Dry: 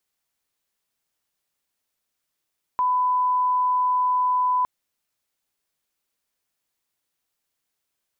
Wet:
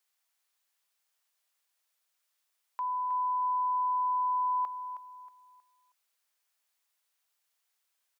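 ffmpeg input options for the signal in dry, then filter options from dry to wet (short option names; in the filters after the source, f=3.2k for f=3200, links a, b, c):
-f lavfi -i "sine=f=1000:d=1.86:r=44100,volume=0.06dB"
-filter_complex "[0:a]highpass=720,alimiter=level_in=5dB:limit=-24dB:level=0:latency=1:release=15,volume=-5dB,asplit=2[a][b];[b]aecho=0:1:317|634|951|1268:0.299|0.102|0.0345|0.0117[c];[a][c]amix=inputs=2:normalize=0"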